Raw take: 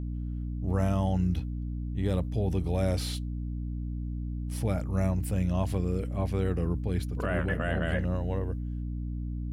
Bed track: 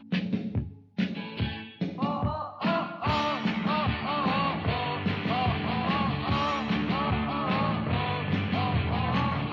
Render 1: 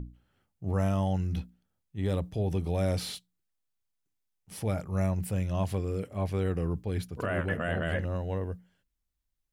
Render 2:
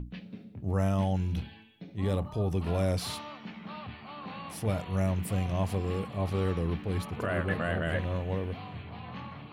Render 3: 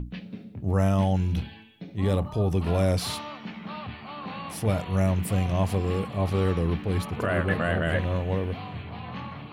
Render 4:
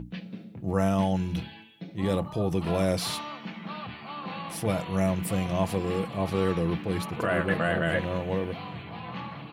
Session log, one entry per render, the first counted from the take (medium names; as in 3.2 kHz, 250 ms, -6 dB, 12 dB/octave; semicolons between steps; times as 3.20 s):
hum notches 60/120/180/240/300 Hz
add bed track -15 dB
trim +5 dB
high-pass 140 Hz 6 dB/octave; comb 6 ms, depth 37%